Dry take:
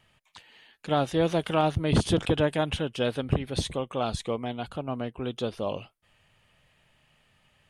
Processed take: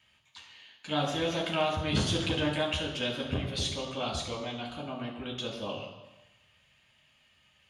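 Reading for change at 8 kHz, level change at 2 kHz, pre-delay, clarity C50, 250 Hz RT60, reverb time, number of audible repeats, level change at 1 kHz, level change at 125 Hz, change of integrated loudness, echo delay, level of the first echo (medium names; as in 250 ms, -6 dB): +0.5 dB, +0.5 dB, 3 ms, 5.5 dB, 1.0 s, 1.0 s, no echo, -4.5 dB, -5.5 dB, -3.5 dB, no echo, no echo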